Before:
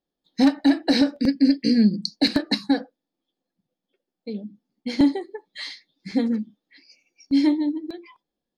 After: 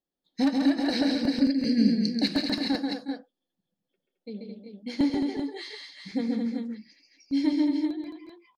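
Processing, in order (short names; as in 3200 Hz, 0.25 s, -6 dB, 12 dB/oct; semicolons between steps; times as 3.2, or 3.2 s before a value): tapped delay 91/135/165/217/362/388 ms -20/-4/-14/-6.5/-14.5/-6.5 dB; gain -7 dB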